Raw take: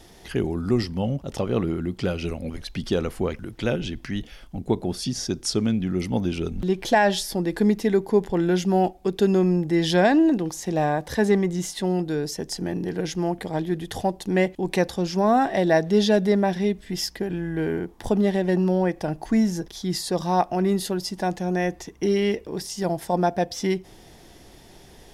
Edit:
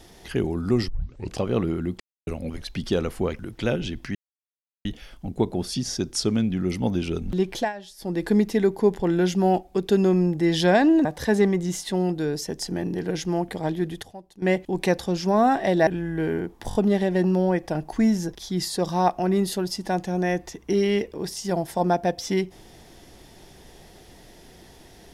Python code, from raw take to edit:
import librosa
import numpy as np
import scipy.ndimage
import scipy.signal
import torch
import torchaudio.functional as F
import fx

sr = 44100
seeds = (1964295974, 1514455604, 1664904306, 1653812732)

y = fx.edit(x, sr, fx.tape_start(start_s=0.88, length_s=0.53),
    fx.silence(start_s=2.0, length_s=0.27),
    fx.insert_silence(at_s=4.15, length_s=0.7),
    fx.fade_down_up(start_s=6.72, length_s=0.85, db=-18.5, fade_s=0.31, curve='qsin'),
    fx.cut(start_s=10.35, length_s=0.6),
    fx.fade_down_up(start_s=13.62, length_s=1.01, db=-17.5, fade_s=0.31, curve='log'),
    fx.cut(start_s=15.77, length_s=1.49),
    fx.stutter(start_s=18.08, slice_s=0.02, count=4), tone=tone)